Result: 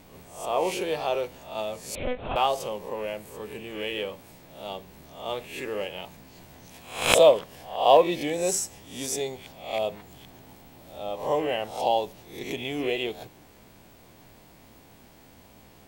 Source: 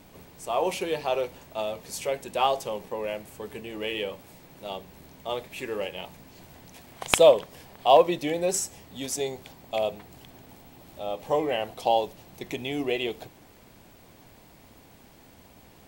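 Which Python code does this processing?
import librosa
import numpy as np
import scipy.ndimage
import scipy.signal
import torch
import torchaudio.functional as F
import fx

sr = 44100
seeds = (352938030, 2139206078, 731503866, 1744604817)

y = fx.spec_swells(x, sr, rise_s=0.5)
y = fx.lpc_monotone(y, sr, seeds[0], pitch_hz=250.0, order=8, at=(1.95, 2.36))
y = y * 10.0 ** (-1.5 / 20.0)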